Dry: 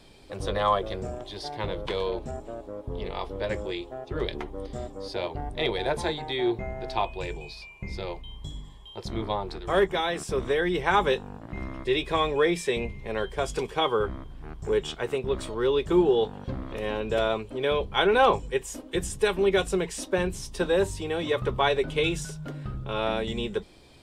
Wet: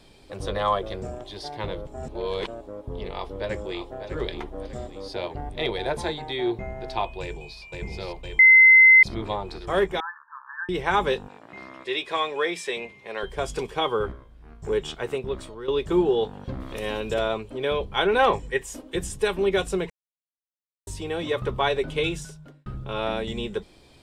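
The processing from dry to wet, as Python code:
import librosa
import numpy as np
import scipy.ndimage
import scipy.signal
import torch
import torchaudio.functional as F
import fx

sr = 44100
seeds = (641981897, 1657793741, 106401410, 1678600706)

y = fx.echo_throw(x, sr, start_s=3.1, length_s=0.97, ms=600, feedback_pct=40, wet_db=-9.0)
y = fx.echo_throw(y, sr, start_s=7.21, length_s=0.4, ms=510, feedback_pct=75, wet_db=-2.5)
y = fx.brickwall_bandpass(y, sr, low_hz=840.0, high_hz=1800.0, at=(10.0, 10.69))
y = fx.weighting(y, sr, curve='A', at=(11.28, 13.23))
y = fx.comb_fb(y, sr, f0_hz=58.0, decay_s=0.36, harmonics='all', damping=0.0, mix_pct=90, at=(14.11, 14.62), fade=0.02)
y = fx.high_shelf(y, sr, hz=3900.0, db=12.0, at=(16.6, 17.14))
y = fx.peak_eq(y, sr, hz=1900.0, db=10.0, octaves=0.33, at=(18.19, 18.65))
y = fx.edit(y, sr, fx.reverse_span(start_s=1.87, length_s=0.6),
    fx.bleep(start_s=8.39, length_s=0.64, hz=2060.0, db=-9.0),
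    fx.fade_out_to(start_s=15.16, length_s=0.52, floor_db=-12.5),
    fx.silence(start_s=19.9, length_s=0.97),
    fx.fade_out_span(start_s=22.05, length_s=0.61), tone=tone)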